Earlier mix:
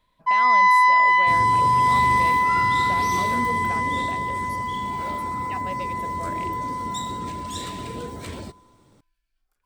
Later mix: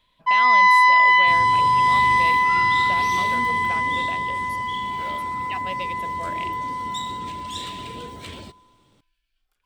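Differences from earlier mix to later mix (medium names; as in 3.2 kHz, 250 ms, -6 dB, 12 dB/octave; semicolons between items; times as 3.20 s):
second sound -4.5 dB; master: add peaking EQ 3.1 kHz +10.5 dB 0.93 oct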